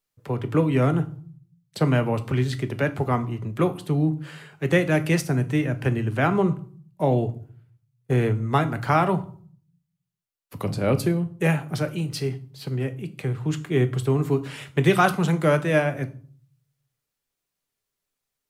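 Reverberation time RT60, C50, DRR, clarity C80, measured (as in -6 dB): 0.50 s, 17.0 dB, 9.0 dB, 21.5 dB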